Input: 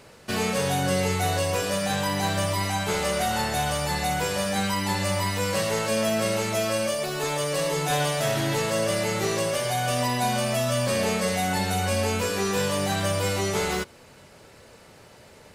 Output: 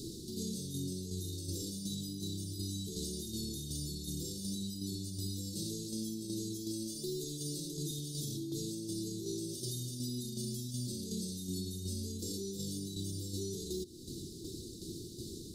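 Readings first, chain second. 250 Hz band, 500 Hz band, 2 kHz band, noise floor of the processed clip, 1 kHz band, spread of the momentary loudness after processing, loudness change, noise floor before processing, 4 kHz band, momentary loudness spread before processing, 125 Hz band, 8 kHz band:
-9.0 dB, -20.0 dB, under -40 dB, -47 dBFS, under -40 dB, 3 LU, -14.5 dB, -51 dBFS, -13.0 dB, 2 LU, -11.5 dB, -11.0 dB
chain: Chebyshev band-stop 340–3700 Hz, order 5; band shelf 770 Hz +15.5 dB 2.5 oct; compressor, threshold -39 dBFS, peak gain reduction 17 dB; limiter -39 dBFS, peak gain reduction 11 dB; tremolo saw down 2.7 Hz, depth 50%; gain +10 dB

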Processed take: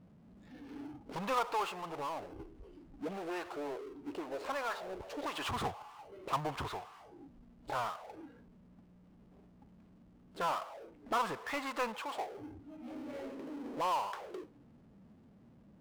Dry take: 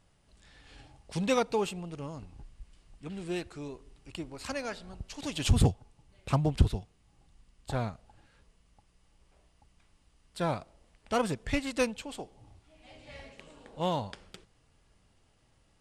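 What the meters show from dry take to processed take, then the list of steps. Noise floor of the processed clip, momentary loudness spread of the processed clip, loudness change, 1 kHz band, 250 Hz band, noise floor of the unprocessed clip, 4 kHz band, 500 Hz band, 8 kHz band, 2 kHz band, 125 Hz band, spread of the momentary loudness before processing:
-61 dBFS, 19 LU, -6.5 dB, +2.0 dB, -9.0 dB, -68 dBFS, -5.0 dB, -6.0 dB, -9.0 dB, -2.0 dB, -18.0 dB, 21 LU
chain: auto-wah 200–1100 Hz, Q 3.3, up, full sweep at -34 dBFS; power-law curve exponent 0.5; spectral noise reduction 8 dB

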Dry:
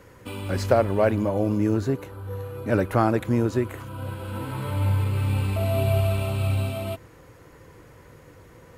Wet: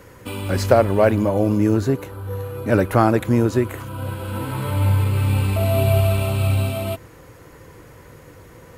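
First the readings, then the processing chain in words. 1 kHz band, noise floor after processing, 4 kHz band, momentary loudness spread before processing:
+5.0 dB, -45 dBFS, +5.5 dB, 13 LU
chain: high shelf 9000 Hz +5 dB; gain +5 dB

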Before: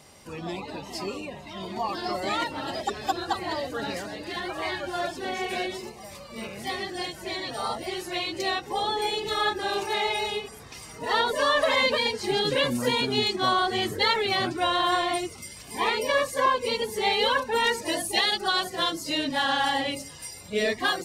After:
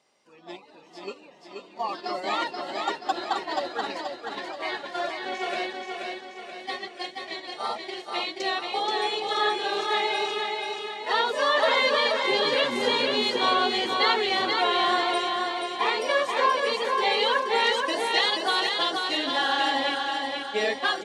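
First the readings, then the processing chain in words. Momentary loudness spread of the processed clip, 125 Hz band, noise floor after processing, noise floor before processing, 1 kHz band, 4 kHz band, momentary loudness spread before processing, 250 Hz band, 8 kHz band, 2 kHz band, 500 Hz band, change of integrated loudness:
13 LU, under -10 dB, -50 dBFS, -44 dBFS, +1.5 dB, +1.0 dB, 13 LU, -2.5 dB, -5.5 dB, +1.5 dB, +0.5 dB, +1.0 dB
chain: gate -31 dBFS, range -14 dB; BPF 310–6200 Hz; feedback echo 0.48 s, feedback 49%, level -4 dB

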